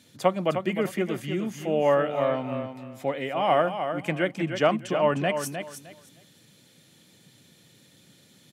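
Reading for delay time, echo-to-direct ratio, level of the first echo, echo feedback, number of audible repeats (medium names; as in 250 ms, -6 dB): 307 ms, -8.0 dB, -8.0 dB, 21%, 2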